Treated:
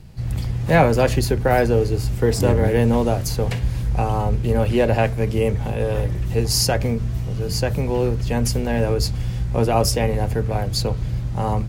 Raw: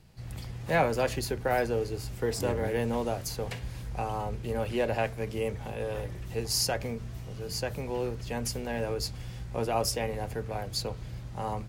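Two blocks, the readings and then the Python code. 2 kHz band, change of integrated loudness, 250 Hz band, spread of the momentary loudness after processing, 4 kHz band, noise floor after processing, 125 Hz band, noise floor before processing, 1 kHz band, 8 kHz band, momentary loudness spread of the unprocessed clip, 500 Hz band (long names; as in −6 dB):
+8.0 dB, +11.5 dB, +13.0 dB, 7 LU, +8.0 dB, −26 dBFS, +15.5 dB, −41 dBFS, +9.0 dB, +8.0 dB, 11 LU, +10.0 dB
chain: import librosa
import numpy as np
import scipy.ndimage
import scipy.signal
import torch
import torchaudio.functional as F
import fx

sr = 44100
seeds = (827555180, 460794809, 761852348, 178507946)

y = fx.low_shelf(x, sr, hz=280.0, db=9.0)
y = F.gain(torch.from_numpy(y), 8.0).numpy()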